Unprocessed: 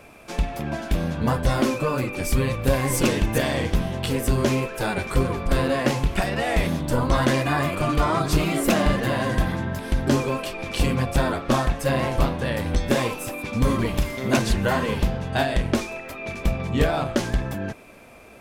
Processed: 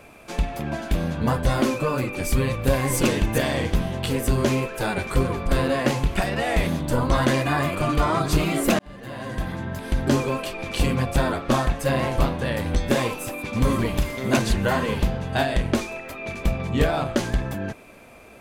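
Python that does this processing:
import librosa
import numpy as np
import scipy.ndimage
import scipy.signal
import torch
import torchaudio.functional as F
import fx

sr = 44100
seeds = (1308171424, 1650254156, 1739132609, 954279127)

y = fx.echo_throw(x, sr, start_s=13.03, length_s=0.45, ms=520, feedback_pct=40, wet_db=-11.0)
y = fx.edit(y, sr, fx.fade_in_span(start_s=8.79, length_s=1.23), tone=tone)
y = fx.notch(y, sr, hz=5400.0, q=21.0)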